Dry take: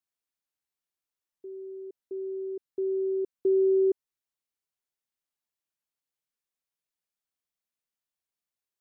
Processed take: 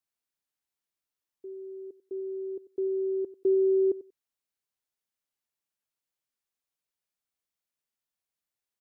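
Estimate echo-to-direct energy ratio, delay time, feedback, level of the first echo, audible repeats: -17.0 dB, 93 ms, 15%, -17.0 dB, 2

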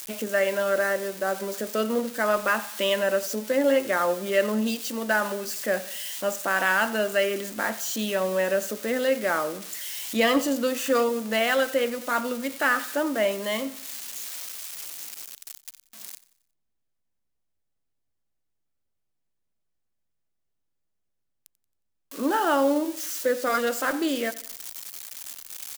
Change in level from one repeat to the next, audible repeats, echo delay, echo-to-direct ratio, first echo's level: -7.0 dB, 3, 90 ms, -17.5 dB, -18.5 dB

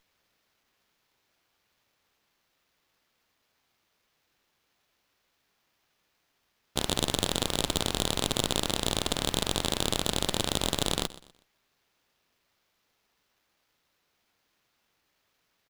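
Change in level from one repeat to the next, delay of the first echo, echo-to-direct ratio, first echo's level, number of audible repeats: -9.5 dB, 0.123 s, -17.5 dB, -18.0 dB, 2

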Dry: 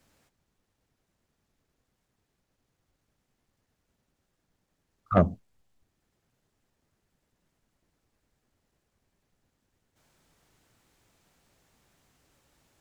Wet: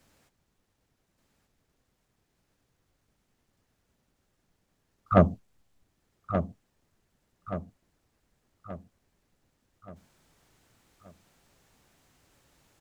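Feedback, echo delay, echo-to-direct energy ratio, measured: 47%, 1.178 s, -8.0 dB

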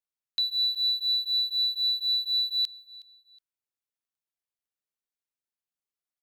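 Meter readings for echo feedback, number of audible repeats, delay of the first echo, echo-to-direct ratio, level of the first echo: 32%, 2, 0.367 s, -20.5 dB, -21.0 dB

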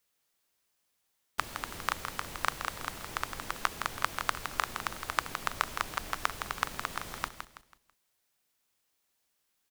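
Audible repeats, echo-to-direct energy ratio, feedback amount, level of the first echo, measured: 3, -7.5 dB, 35%, -8.0 dB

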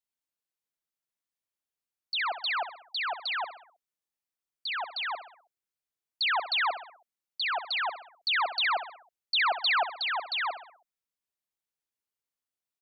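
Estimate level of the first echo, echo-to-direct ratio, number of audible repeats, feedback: -11.5 dB, -10.5 dB, 4, 49%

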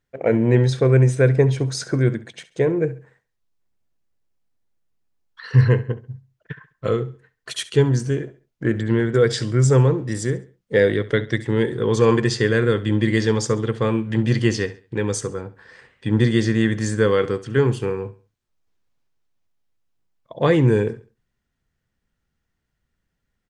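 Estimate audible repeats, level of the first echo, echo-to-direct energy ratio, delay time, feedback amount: 2, -17.0 dB, -16.5 dB, 68 ms, 33%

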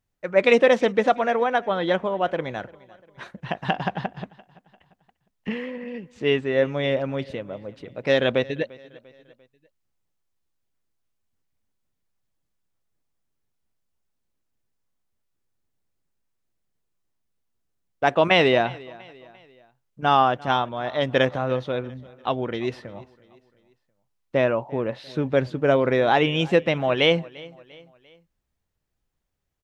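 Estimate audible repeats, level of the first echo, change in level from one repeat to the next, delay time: 2, -22.0 dB, -7.0 dB, 0.346 s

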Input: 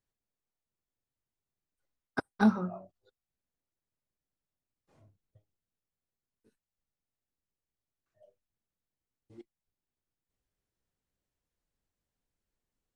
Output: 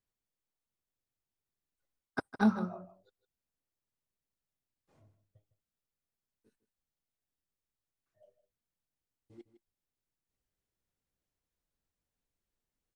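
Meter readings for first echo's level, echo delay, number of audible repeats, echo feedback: -13.5 dB, 0.157 s, 1, no steady repeat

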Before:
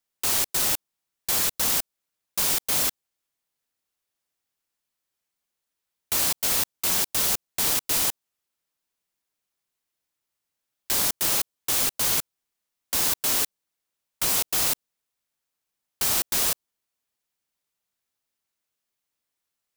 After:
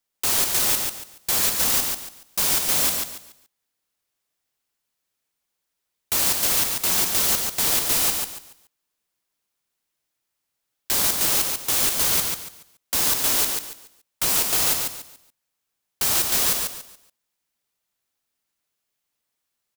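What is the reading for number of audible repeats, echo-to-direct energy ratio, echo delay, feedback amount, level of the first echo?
3, -4.0 dB, 0.142 s, 29%, -4.5 dB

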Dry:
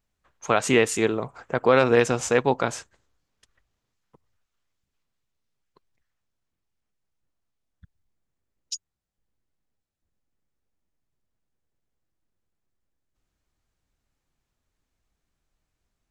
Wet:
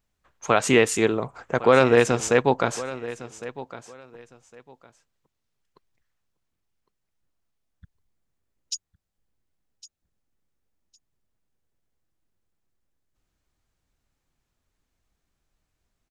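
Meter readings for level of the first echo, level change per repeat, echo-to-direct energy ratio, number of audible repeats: -16.0 dB, -13.5 dB, -16.0 dB, 2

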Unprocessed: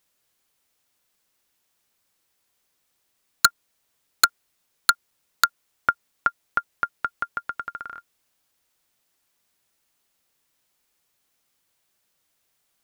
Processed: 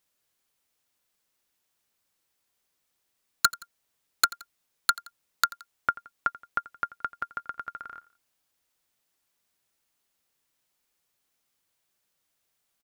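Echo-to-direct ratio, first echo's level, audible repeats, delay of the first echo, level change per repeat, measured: -19.0 dB, -20.0 dB, 2, 86 ms, -6.0 dB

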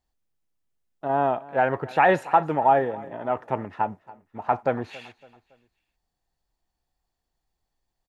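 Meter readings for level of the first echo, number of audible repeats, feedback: -21.0 dB, 2, 42%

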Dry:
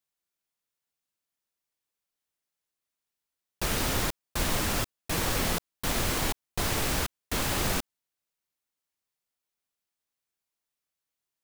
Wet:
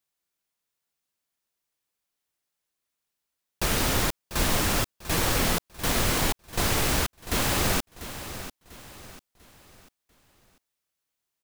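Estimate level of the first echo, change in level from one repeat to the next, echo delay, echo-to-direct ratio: -13.0 dB, -8.5 dB, 0.694 s, -12.5 dB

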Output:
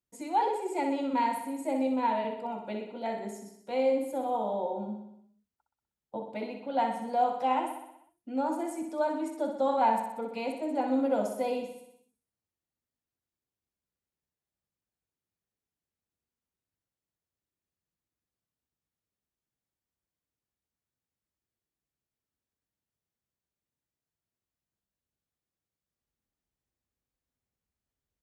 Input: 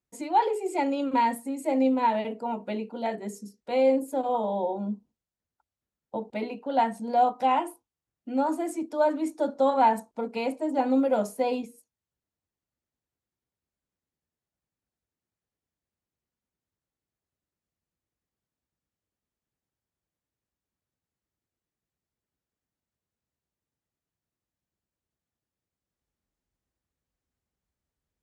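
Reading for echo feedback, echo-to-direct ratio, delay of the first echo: 59%, -4.5 dB, 62 ms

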